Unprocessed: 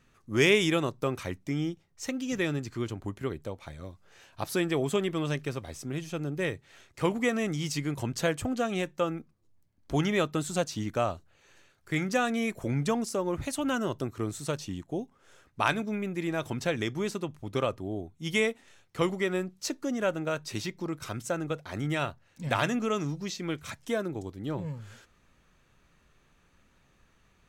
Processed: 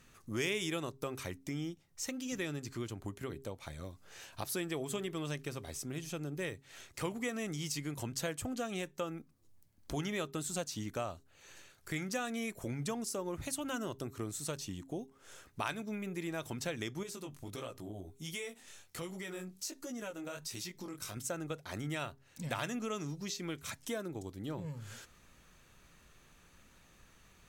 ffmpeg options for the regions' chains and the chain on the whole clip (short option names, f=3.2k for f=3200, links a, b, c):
-filter_complex "[0:a]asettb=1/sr,asplit=3[a][b][c];[a]atrim=end=17.034[d];[b]atrim=start=17.03:end=21.17,asetpts=PTS-STARTPTS,afade=t=in:d=0.004:c=qsin,afade=t=out:st=4.136:d=0.004:c=qsin,flanger=delay=16:depth=6.4:speed=1.4,highshelf=f=4.5k:g=6,acompressor=threshold=-41dB:ratio=2:attack=3.2:release=140:knee=1:detection=peak[e];[c]atrim=start=21.166[f];[d][e]acrossfade=d=0.004:c1=hsin:c2=qsin[g];[g][f]acrossfade=d=0.004:c1=qsin:c2=hsin,aemphasis=mode=production:type=cd,acompressor=threshold=-46dB:ratio=2,bandreject=f=134.9:t=h:w=4,bandreject=f=269.8:t=h:w=4,bandreject=f=404.7:t=h:w=4,volume=2dB"